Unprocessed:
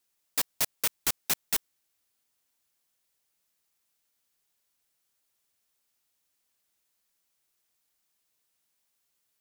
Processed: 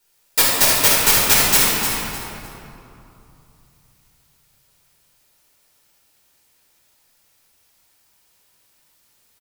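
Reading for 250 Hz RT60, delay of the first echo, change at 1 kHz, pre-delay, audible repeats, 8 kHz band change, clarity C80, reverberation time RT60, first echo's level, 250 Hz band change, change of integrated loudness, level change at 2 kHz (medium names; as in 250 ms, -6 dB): 3.4 s, 303 ms, +19.5 dB, 7 ms, 1, +16.0 dB, -2.0 dB, 2.9 s, -6.5 dB, +19.0 dB, +15.0 dB, +18.5 dB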